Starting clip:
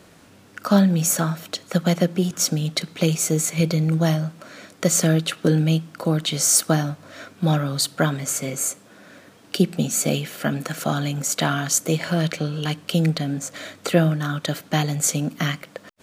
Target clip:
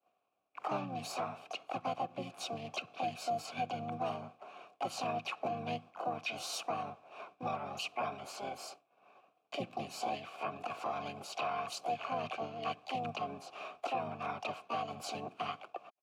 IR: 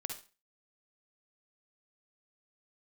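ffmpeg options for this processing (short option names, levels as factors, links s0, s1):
-filter_complex "[0:a]asplit=4[s0][s1][s2][s3];[s1]asetrate=29433,aresample=44100,atempo=1.49831,volume=1[s4];[s2]asetrate=55563,aresample=44100,atempo=0.793701,volume=0.158[s5];[s3]asetrate=66075,aresample=44100,atempo=0.66742,volume=0.794[s6];[s0][s4][s5][s6]amix=inputs=4:normalize=0,acrossover=split=320|640|7500[s7][s8][s9][s10];[s8]acompressor=threshold=0.02:ratio=6[s11];[s7][s11][s9][s10]amix=inputs=4:normalize=0,asplit=3[s12][s13][s14];[s12]bandpass=f=730:t=q:w=8,volume=1[s15];[s13]bandpass=f=1090:t=q:w=8,volume=0.501[s16];[s14]bandpass=f=2440:t=q:w=8,volume=0.355[s17];[s15][s16][s17]amix=inputs=3:normalize=0,agate=range=0.0224:threshold=0.00447:ratio=3:detection=peak,alimiter=level_in=1.12:limit=0.0631:level=0:latency=1:release=182,volume=0.891,volume=0.891"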